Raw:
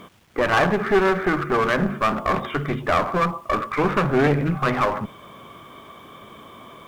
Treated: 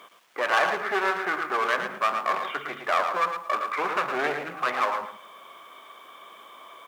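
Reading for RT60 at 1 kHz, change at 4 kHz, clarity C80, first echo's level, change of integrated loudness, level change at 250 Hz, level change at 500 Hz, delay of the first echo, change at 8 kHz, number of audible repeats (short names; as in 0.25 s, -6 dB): none, -2.0 dB, none, -7.5 dB, -5.0 dB, -16.5 dB, -8.5 dB, 0.112 s, -2.0 dB, 2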